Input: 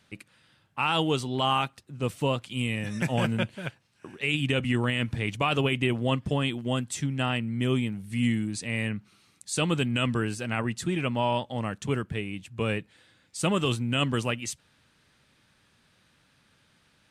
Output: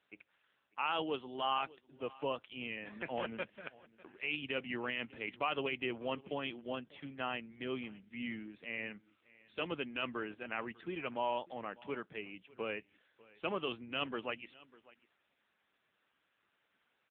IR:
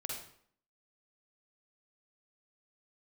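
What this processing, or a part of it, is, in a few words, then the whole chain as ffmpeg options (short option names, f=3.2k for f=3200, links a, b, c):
satellite phone: -af "highpass=360,lowpass=3.2k,aecho=1:1:598:0.0794,volume=-7dB" -ar 8000 -c:a libopencore_amrnb -b:a 6700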